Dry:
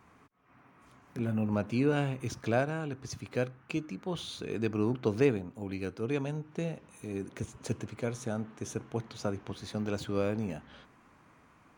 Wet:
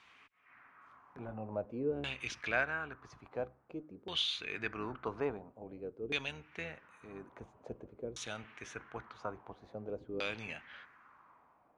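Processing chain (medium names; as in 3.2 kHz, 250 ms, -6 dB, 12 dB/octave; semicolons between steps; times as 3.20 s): octave divider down 1 oct, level -6 dB; pre-emphasis filter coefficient 0.97; LFO low-pass saw down 0.49 Hz 370–3500 Hz; trim +12 dB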